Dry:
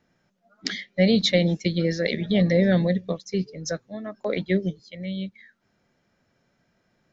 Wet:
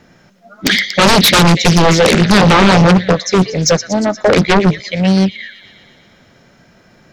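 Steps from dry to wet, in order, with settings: thin delay 0.118 s, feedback 68%, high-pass 1800 Hz, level -12 dB; sine folder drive 17 dB, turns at -4.5 dBFS; Doppler distortion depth 0.54 ms

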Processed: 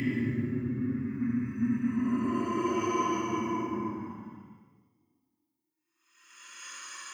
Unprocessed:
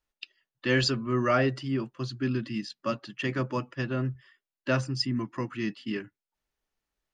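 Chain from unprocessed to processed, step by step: RIAA curve recording; Paulstretch 29×, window 0.05 s, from 5.11; three-band expander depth 70%; gain +5.5 dB

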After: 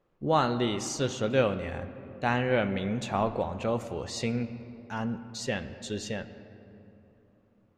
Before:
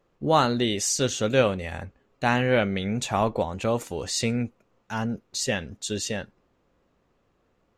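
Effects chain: LPF 3300 Hz 6 dB/oct; reverb RT60 3.1 s, pre-delay 6 ms, DRR 11 dB; gain -4 dB

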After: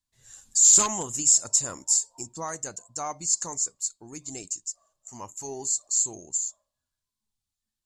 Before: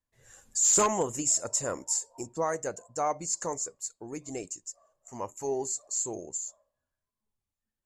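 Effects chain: graphic EQ 500/2000/4000/8000 Hz -10/-4/+8/+6 dB

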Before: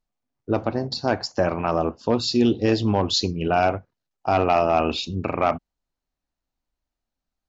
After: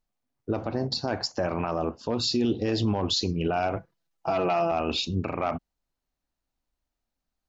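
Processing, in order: 3.76–4.71 comb 6 ms, depth 89%; limiter -16.5 dBFS, peak gain reduction 10.5 dB

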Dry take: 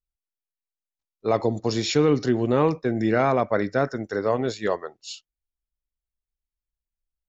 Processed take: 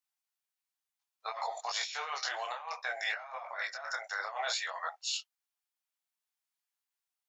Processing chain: steep high-pass 700 Hz 48 dB/oct; negative-ratio compressor -38 dBFS, ratio -1; detuned doubles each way 21 cents; gain +3.5 dB

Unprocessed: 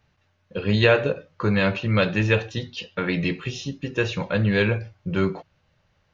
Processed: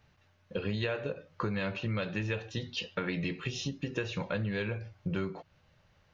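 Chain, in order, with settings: compressor 6:1, threshold -31 dBFS, peak gain reduction 17.5 dB

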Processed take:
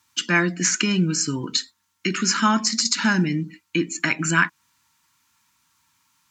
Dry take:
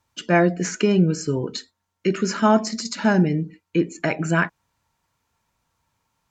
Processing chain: HPF 280 Hz 6 dB/oct; high shelf 2500 Hz +7.5 dB; in parallel at -1.5 dB: compressor, threshold -26 dBFS, peak gain reduction 13.5 dB; on the sum: band shelf 560 Hz -15 dB 1.2 oct

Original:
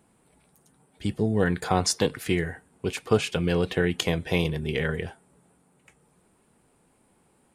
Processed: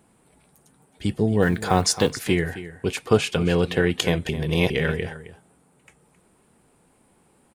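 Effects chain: 1.42–2.13 block floating point 7-bit; 4.29–4.7 reverse; echo 0.266 s -14.5 dB; gain +3.5 dB

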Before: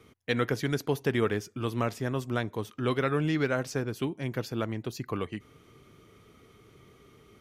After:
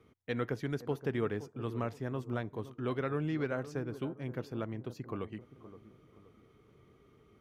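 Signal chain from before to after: high shelf 2700 Hz -11 dB; on a send: analogue delay 0.52 s, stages 4096, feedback 36%, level -14 dB; on the sum: gain -6 dB

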